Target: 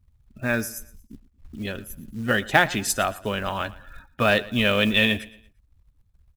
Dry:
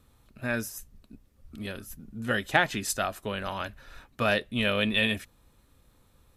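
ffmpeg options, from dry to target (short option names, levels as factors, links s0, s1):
-filter_complex "[0:a]afftdn=nr=28:nf=-49,acontrast=43,asplit=2[s0][s1];[s1]aecho=0:1:115|230|345:0.1|0.037|0.0137[s2];[s0][s2]amix=inputs=2:normalize=0,acrusher=bits=6:mode=log:mix=0:aa=0.000001"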